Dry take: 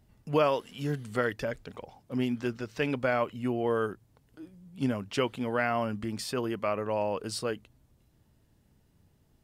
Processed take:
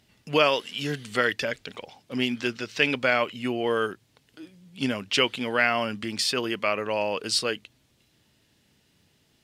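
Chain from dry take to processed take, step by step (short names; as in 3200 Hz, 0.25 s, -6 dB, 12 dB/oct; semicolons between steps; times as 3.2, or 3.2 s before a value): weighting filter D; gain +3 dB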